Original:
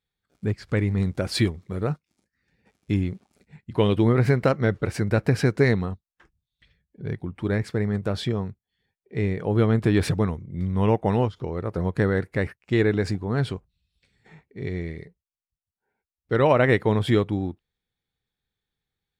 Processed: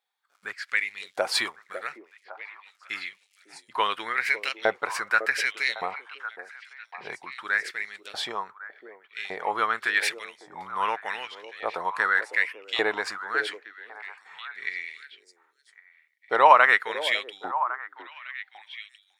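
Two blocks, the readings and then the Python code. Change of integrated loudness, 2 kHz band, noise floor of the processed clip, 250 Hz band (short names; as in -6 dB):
-2.0 dB, +7.5 dB, -68 dBFS, -21.5 dB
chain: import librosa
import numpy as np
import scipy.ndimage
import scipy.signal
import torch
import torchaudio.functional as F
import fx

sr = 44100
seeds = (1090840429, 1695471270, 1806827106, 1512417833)

y = fx.filter_lfo_highpass(x, sr, shape='saw_up', hz=0.86, low_hz=720.0, high_hz=3400.0, q=3.0)
y = fx.echo_stepped(y, sr, ms=553, hz=400.0, octaves=1.4, feedback_pct=70, wet_db=-7.5)
y = F.gain(torch.from_numpy(y), 2.5).numpy()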